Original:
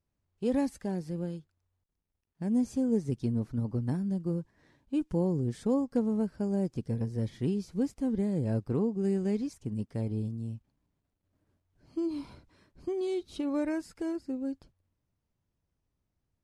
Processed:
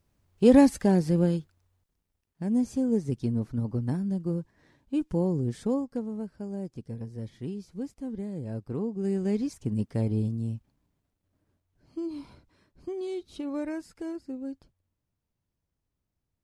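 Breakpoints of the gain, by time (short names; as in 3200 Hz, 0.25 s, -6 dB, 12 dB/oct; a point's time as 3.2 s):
1.36 s +11.5 dB
2.43 s +2 dB
5.62 s +2 dB
6.06 s -5.5 dB
8.51 s -5.5 dB
9.61 s +5.5 dB
10.48 s +5.5 dB
11.99 s -2 dB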